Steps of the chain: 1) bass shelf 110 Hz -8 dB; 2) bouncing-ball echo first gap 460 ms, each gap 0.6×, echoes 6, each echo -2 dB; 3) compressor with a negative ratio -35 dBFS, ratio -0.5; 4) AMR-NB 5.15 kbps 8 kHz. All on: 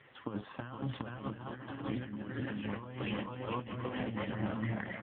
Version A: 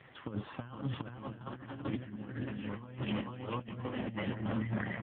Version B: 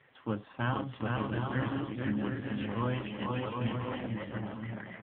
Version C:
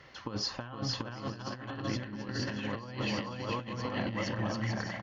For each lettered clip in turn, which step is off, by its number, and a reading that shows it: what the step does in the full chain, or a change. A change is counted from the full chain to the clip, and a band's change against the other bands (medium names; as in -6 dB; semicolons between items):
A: 1, 125 Hz band +2.0 dB; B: 3, loudness change +4.5 LU; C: 4, 4 kHz band +8.0 dB